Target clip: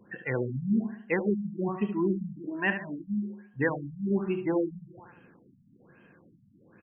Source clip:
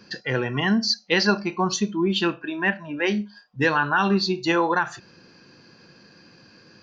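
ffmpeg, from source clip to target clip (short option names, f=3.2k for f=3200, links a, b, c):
-af "aecho=1:1:73|146|219|292|365:0.355|0.156|0.0687|0.0302|0.0133,afftfilt=real='re*lt(b*sr/1024,230*pow(3300/230,0.5+0.5*sin(2*PI*1.2*pts/sr)))':imag='im*lt(b*sr/1024,230*pow(3300/230,0.5+0.5*sin(2*PI*1.2*pts/sr)))':win_size=1024:overlap=0.75,volume=-5dB"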